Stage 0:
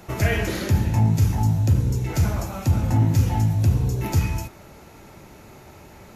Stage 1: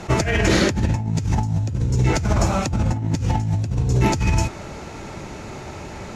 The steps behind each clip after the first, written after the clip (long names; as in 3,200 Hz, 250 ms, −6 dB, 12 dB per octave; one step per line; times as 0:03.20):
low-pass filter 8,400 Hz 24 dB per octave
compressor whose output falls as the input rises −26 dBFS, ratio −1
level that may rise only so fast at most 540 dB per second
level +6 dB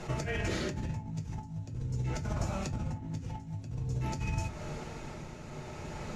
downward compressor 4 to 1, threshold −27 dBFS, peak gain reduction 12 dB
shaped tremolo triangle 0.51 Hz, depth 60%
convolution reverb RT60 0.20 s, pre-delay 4 ms, DRR 4 dB
level −6.5 dB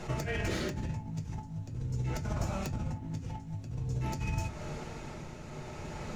stylus tracing distortion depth 0.069 ms
background noise brown −57 dBFS